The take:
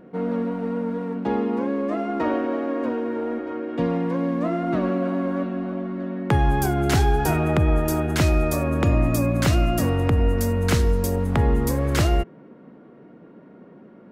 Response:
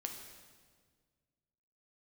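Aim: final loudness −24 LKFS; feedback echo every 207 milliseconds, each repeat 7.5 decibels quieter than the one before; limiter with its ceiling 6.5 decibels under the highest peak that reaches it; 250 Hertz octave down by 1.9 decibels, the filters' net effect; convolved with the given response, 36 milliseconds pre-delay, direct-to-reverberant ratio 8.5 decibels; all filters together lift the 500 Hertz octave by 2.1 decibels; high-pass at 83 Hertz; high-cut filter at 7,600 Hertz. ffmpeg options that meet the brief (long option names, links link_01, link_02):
-filter_complex "[0:a]highpass=83,lowpass=7600,equalizer=frequency=250:width_type=o:gain=-3.5,equalizer=frequency=500:width_type=o:gain=3.5,alimiter=limit=-15dB:level=0:latency=1,aecho=1:1:207|414|621|828|1035:0.422|0.177|0.0744|0.0312|0.0131,asplit=2[link_01][link_02];[1:a]atrim=start_sample=2205,adelay=36[link_03];[link_02][link_03]afir=irnorm=-1:irlink=0,volume=-7dB[link_04];[link_01][link_04]amix=inputs=2:normalize=0"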